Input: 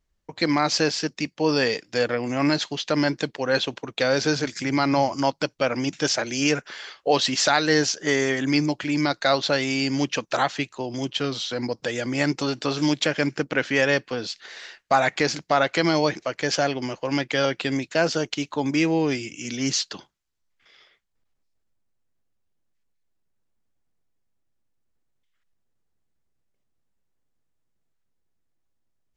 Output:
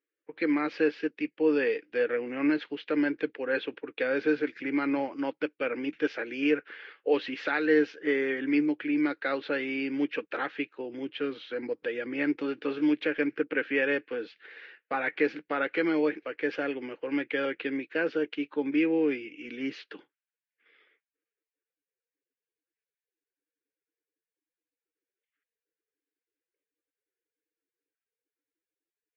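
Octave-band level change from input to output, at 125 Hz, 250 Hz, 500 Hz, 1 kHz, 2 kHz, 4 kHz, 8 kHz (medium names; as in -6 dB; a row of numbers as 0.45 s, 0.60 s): -20.5 dB, -3.5 dB, -4.5 dB, -12.0 dB, -5.5 dB, -17.0 dB, under -35 dB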